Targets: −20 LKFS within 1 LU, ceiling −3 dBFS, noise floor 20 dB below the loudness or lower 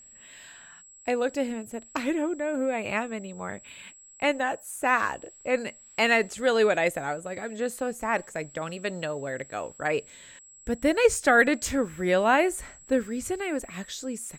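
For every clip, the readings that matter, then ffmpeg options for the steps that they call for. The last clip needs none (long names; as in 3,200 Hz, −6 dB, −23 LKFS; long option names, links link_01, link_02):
interfering tone 7,700 Hz; level of the tone −49 dBFS; integrated loudness −27.0 LKFS; sample peak −8.0 dBFS; target loudness −20.0 LKFS
→ -af "bandreject=frequency=7700:width=30"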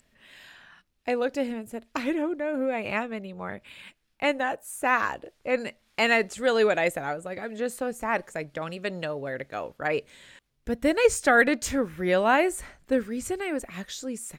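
interfering tone none found; integrated loudness −27.0 LKFS; sample peak −8.0 dBFS; target loudness −20.0 LKFS
→ -af "volume=7dB,alimiter=limit=-3dB:level=0:latency=1"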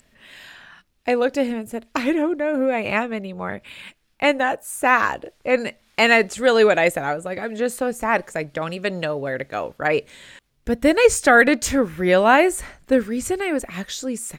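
integrated loudness −20.0 LKFS; sample peak −3.0 dBFS; background noise floor −63 dBFS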